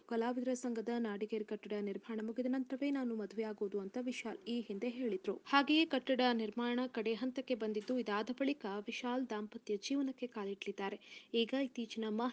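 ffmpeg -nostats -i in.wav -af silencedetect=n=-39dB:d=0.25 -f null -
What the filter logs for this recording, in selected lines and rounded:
silence_start: 10.95
silence_end: 11.34 | silence_duration: 0.39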